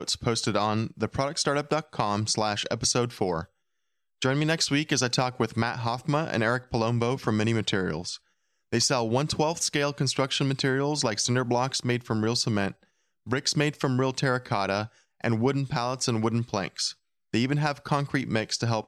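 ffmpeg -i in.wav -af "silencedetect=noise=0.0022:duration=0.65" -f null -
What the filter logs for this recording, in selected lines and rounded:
silence_start: 3.47
silence_end: 4.22 | silence_duration: 0.75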